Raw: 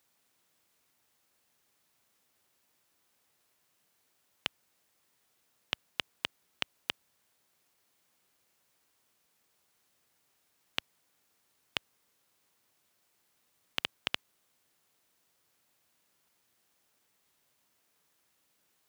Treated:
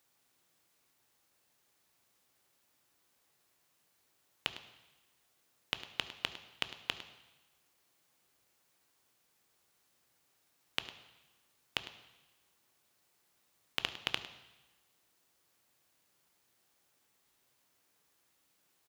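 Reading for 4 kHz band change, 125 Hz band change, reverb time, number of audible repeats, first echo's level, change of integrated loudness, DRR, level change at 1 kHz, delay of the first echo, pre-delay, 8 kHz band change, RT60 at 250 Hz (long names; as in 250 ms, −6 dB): −0.5 dB, +0.5 dB, 1.0 s, 1, −15.5 dB, −1.0 dB, 9.0 dB, 0.0 dB, 104 ms, 3 ms, −0.5 dB, 1.1 s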